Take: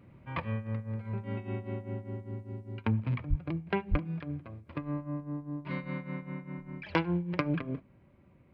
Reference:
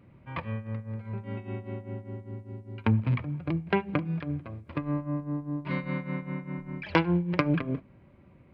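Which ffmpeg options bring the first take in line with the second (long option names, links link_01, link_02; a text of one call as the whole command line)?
ffmpeg -i in.wav -filter_complex "[0:a]asplit=3[link_01][link_02][link_03];[link_01]afade=type=out:start_time=3.29:duration=0.02[link_04];[link_02]highpass=frequency=140:width=0.5412,highpass=frequency=140:width=1.3066,afade=type=in:start_time=3.29:duration=0.02,afade=type=out:start_time=3.41:duration=0.02[link_05];[link_03]afade=type=in:start_time=3.41:duration=0.02[link_06];[link_04][link_05][link_06]amix=inputs=3:normalize=0,asplit=3[link_07][link_08][link_09];[link_07]afade=type=out:start_time=3.9:duration=0.02[link_10];[link_08]highpass=frequency=140:width=0.5412,highpass=frequency=140:width=1.3066,afade=type=in:start_time=3.9:duration=0.02,afade=type=out:start_time=4.02:duration=0.02[link_11];[link_09]afade=type=in:start_time=4.02:duration=0.02[link_12];[link_10][link_11][link_12]amix=inputs=3:normalize=0,asetnsamples=nb_out_samples=441:pad=0,asendcmd='2.79 volume volume 5dB',volume=0dB" out.wav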